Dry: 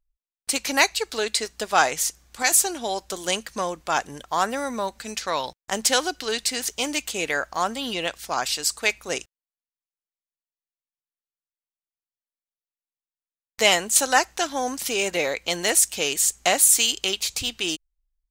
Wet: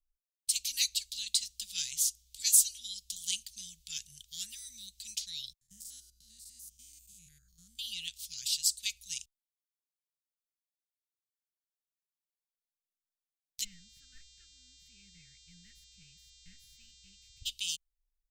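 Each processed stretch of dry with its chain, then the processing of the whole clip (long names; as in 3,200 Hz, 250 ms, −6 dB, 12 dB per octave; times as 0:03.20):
0:05.61–0:07.79: spectrum averaged block by block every 100 ms + drawn EQ curve 1,100 Hz 0 dB, 2,900 Hz −27 dB, 11,000 Hz −9 dB
0:13.63–0:17.45: hard clipping −14.5 dBFS + inverse Chebyshev low-pass filter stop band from 3,100 Hz + hum with harmonics 400 Hz, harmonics 20, −46 dBFS −5 dB per octave
whole clip: elliptic band-stop filter 180–3,300 Hz, stop band 80 dB; guitar amp tone stack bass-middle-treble 10-0-10; level −3 dB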